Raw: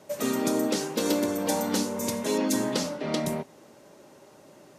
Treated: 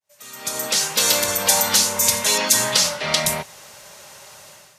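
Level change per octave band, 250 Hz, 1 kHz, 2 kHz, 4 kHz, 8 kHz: -8.0, +8.0, +13.0, +15.5, +16.5 dB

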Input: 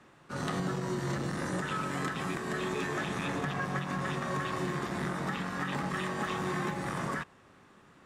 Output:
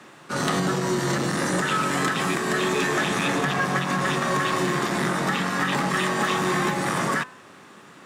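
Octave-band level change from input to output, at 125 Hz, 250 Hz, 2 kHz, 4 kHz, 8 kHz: +6.5, +9.0, +11.5, +13.5, +14.5 dB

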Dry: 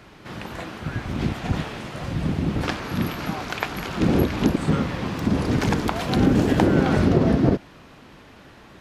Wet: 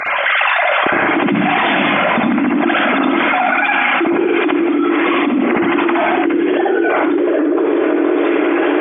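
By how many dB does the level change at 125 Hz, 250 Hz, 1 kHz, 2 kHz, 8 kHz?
-9.0 dB, +8.0 dB, +14.5 dB, +17.5 dB, under -30 dB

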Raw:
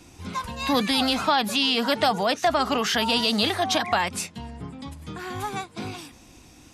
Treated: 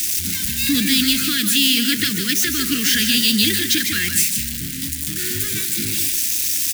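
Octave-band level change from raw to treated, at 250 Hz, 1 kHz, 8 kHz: +6.0, -17.0, +17.5 dB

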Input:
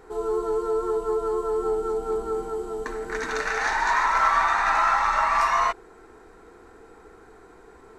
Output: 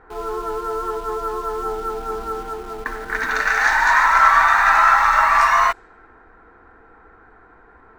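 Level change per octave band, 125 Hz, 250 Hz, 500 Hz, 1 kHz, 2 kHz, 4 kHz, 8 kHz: n/a, -1.0 dB, -2.0 dB, +6.5 dB, +9.5 dB, +5.5 dB, +4.5 dB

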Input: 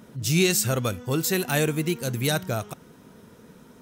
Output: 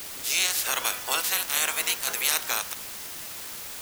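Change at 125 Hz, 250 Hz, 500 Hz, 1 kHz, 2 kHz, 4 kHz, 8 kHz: -29.0, -22.0, -13.5, +1.5, +1.5, +3.5, +3.5 dB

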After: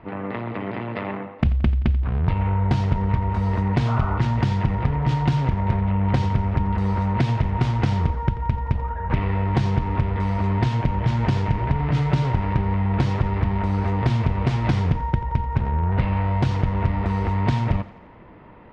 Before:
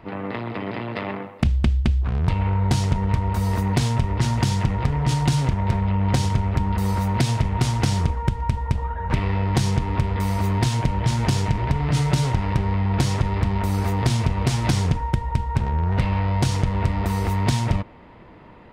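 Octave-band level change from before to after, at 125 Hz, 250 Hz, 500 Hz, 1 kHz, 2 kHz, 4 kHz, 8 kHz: 0.0 dB, +0.5 dB, 0.0 dB, +0.5 dB, -1.0 dB, -7.0 dB, under -15 dB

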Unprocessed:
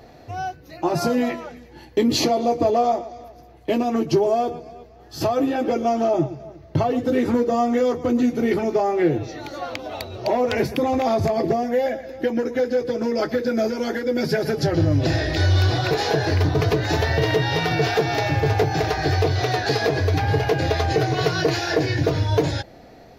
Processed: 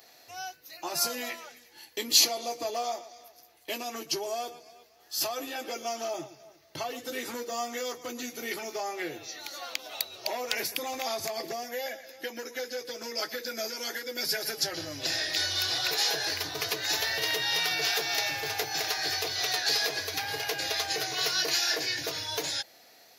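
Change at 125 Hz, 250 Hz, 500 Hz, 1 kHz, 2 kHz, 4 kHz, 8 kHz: -28.5, -21.5, -15.5, -12.0, -4.5, +2.0, +6.0 dB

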